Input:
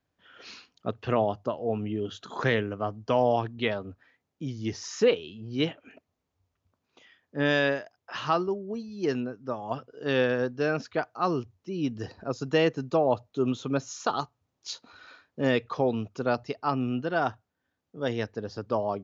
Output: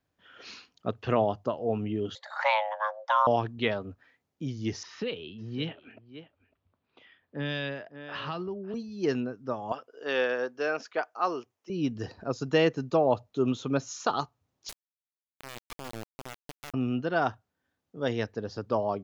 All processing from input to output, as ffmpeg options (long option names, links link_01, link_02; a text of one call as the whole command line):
ffmpeg -i in.wav -filter_complex "[0:a]asettb=1/sr,asplit=3[link_01][link_02][link_03];[link_01]atrim=end=2.154[link_04];[link_02]atrim=start=2.15:end=3.27,asetpts=PTS-STARTPTS,afade=type=in:duration=0.004:curve=qsin,afade=type=out:start_time=1.116:duration=0.004:curve=qsin,equalizer=frequency=250:width=7.4:gain=-6,afreqshift=430,lowpass=4300[link_05];[link_03]atrim=start=3.266[link_06];[link_04][link_05]acrossfade=duration=0.004:curve1=hsin:curve2=qsin[link_07];[link_07][link_06]acrossfade=duration=0.004:curve1=qsin:curve2=hsin,asettb=1/sr,asplit=3[link_08][link_09][link_10];[link_08]atrim=end=4.834[link_11];[link_09]atrim=start=4.83:end=8.74,asetpts=PTS-STARTPTS,afade=type=in:duration=0.004:curve=qsin,afade=type=out:start_time=3.906:duration=0.004:curve=qsin,lowpass=frequency=3900:width=0.5412,lowpass=frequency=3900:width=1.3066,aecho=1:1:552:0.112,atrim=end_sample=172431,acrossover=split=180|3000[link_12][link_13][link_14];[link_13]acompressor=threshold=-34dB:ratio=4:attack=3.2:release=140:knee=2.83:detection=peak[link_15];[link_12][link_15][link_14]amix=inputs=3:normalize=0[link_16];[link_10]atrim=start=8.736[link_17];[link_11][link_16]acrossfade=duration=0.004:curve1=hsin:curve2=qsin[link_18];[link_18][link_17]acrossfade=duration=0.004:curve1=qsin:curve2=hsin,asettb=1/sr,asplit=3[link_19][link_20][link_21];[link_19]atrim=end=9.724[link_22];[link_20]atrim=start=9.72:end=11.7,asetpts=PTS-STARTPTS,afade=type=in:duration=0.004:curve=qsin,afade=type=out:start_time=1.976:duration=0.004:curve=qsin,highpass=460,equalizer=frequency=4000:width_type=o:width=0.27:gain=-6[link_23];[link_21]atrim=start=11.696[link_24];[link_22][link_23]acrossfade=duration=0.004:curve1=hsin:curve2=qsin[link_25];[link_25][link_24]acrossfade=duration=0.004:curve1=qsin:curve2=hsin,asettb=1/sr,asplit=3[link_26][link_27][link_28];[link_26]atrim=end=14.694[link_29];[link_27]atrim=start=14.69:end=16.74,asetpts=PTS-STARTPTS,afade=type=in:duration=0.004:curve=qsin,afade=type=out:start_time=2.046:duration=0.004:curve=qsin,acompressor=threshold=-37dB:ratio=5:attack=3.2:release=140:knee=1:detection=peak,acrusher=bits=3:dc=4:mix=0:aa=0.000001[link_30];[link_28]atrim=start=16.736[link_31];[link_29][link_30]acrossfade=duration=0.004:curve1=hsin:curve2=qsin[link_32];[link_32][link_31]acrossfade=duration=0.004:curve1=qsin:curve2=hsin" out.wav